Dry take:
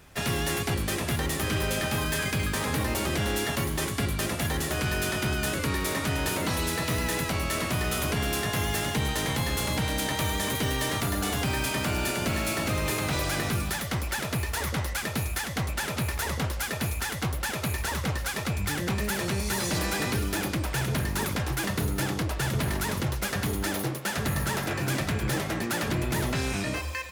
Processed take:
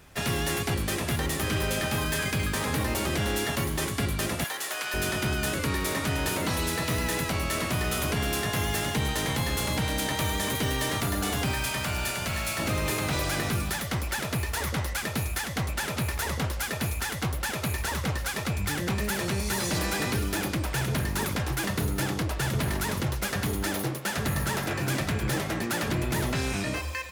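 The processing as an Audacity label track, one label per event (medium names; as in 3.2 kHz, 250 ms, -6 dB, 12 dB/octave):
4.440000	4.940000	high-pass 760 Hz
11.520000	12.580000	peaking EQ 310 Hz -7 dB -> -13.5 dB 1.4 oct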